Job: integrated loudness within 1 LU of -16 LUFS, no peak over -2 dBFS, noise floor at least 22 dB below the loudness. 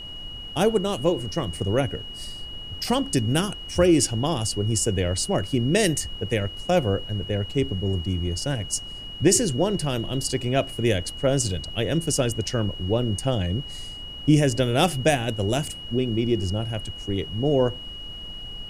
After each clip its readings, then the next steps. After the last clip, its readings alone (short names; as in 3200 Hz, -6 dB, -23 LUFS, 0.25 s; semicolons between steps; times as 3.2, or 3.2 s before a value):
steady tone 2900 Hz; tone level -36 dBFS; noise floor -37 dBFS; noise floor target -46 dBFS; loudness -24.0 LUFS; peak -7.0 dBFS; loudness target -16.0 LUFS
-> notch 2900 Hz, Q 30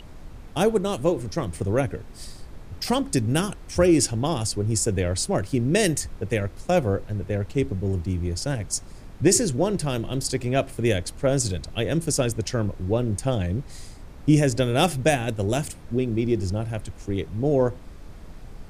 steady tone none; noise floor -42 dBFS; noise floor target -47 dBFS
-> noise print and reduce 6 dB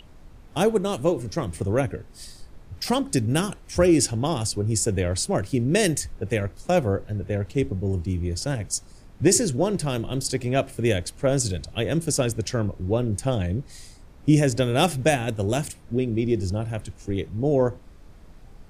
noise floor -48 dBFS; loudness -24.5 LUFS; peak -7.0 dBFS; loudness target -16.0 LUFS
-> gain +8.5 dB; limiter -2 dBFS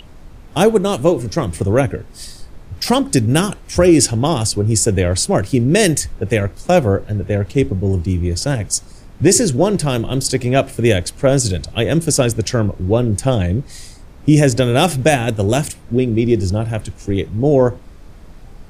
loudness -16.5 LUFS; peak -2.0 dBFS; noise floor -39 dBFS